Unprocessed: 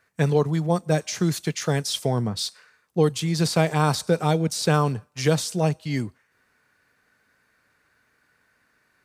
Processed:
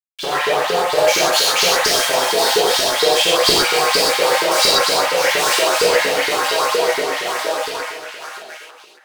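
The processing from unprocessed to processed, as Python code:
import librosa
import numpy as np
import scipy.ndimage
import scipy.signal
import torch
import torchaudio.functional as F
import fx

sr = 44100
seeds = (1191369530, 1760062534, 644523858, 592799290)

p1 = fx.reverse_delay_fb(x, sr, ms=463, feedback_pct=64, wet_db=-13)
p2 = fx.leveller(p1, sr, passes=2)
p3 = fx.fuzz(p2, sr, gain_db=39.0, gate_db=-41.0)
p4 = p3 + fx.echo_feedback(p3, sr, ms=279, feedback_pct=34, wet_db=-4.5, dry=0)
p5 = fx.filter_lfo_highpass(p4, sr, shape='saw_up', hz=4.3, low_hz=380.0, high_hz=4800.0, q=6.3)
p6 = fx.rev_gated(p5, sr, seeds[0], gate_ms=160, shape='flat', drr_db=-5.0)
y = p6 * librosa.db_to_amplitude(-10.5)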